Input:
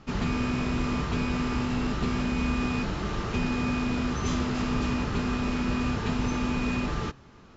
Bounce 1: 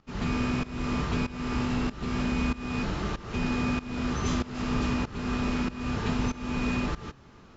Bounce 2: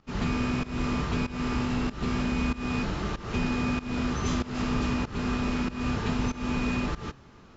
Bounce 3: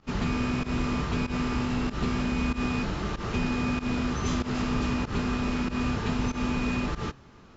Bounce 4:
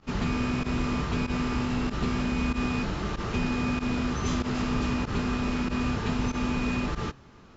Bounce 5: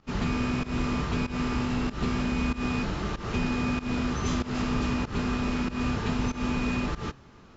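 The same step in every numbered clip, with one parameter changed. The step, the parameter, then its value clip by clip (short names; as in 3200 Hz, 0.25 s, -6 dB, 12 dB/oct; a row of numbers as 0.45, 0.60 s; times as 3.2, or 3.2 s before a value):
pump, release: 423, 272, 109, 64, 171 ms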